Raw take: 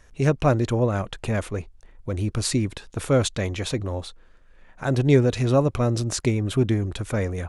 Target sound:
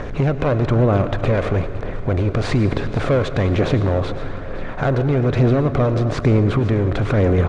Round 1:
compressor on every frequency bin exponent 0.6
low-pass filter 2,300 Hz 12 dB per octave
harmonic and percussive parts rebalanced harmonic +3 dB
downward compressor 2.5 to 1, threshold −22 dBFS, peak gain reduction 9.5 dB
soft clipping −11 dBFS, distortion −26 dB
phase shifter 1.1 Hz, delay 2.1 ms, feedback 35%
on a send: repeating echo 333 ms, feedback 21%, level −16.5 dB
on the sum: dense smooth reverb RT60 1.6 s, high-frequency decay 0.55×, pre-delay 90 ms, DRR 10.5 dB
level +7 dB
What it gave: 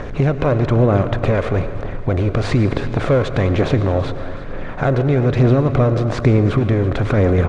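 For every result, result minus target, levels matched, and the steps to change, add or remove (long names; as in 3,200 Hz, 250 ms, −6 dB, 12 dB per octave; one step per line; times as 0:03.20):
echo 179 ms early; soft clipping: distortion −10 dB
change: repeating echo 512 ms, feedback 21%, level −16.5 dB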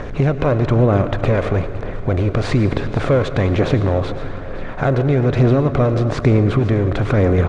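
soft clipping: distortion −10 dB
change: soft clipping −18 dBFS, distortion −16 dB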